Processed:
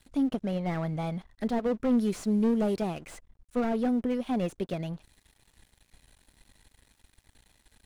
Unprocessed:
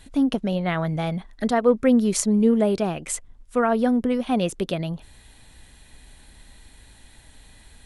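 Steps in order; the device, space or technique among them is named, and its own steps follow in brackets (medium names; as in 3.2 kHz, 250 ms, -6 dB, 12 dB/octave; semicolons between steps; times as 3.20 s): early transistor amplifier (crossover distortion -48.5 dBFS; slew-rate limiter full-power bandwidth 56 Hz); 1.92–3.05 s: peaking EQ 10 kHz +5.5 dB 1.8 oct; trim -6 dB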